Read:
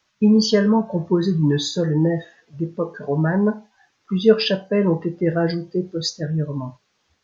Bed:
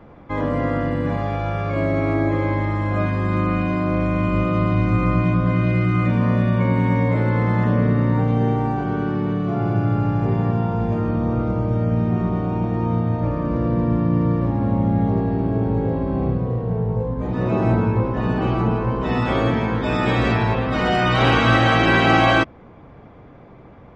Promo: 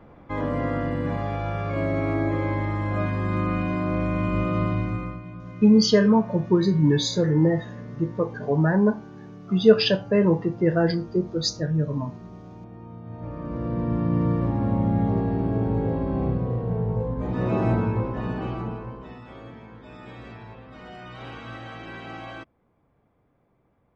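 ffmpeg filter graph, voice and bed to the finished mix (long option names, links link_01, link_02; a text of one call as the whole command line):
ffmpeg -i stem1.wav -i stem2.wav -filter_complex "[0:a]adelay=5400,volume=-1dB[link_01];[1:a]volume=12.5dB,afade=type=out:start_time=4.63:duration=0.57:silence=0.158489,afade=type=in:start_time=13.01:duration=1.21:silence=0.141254,afade=type=out:start_time=17.59:duration=1.6:silence=0.105925[link_02];[link_01][link_02]amix=inputs=2:normalize=0" out.wav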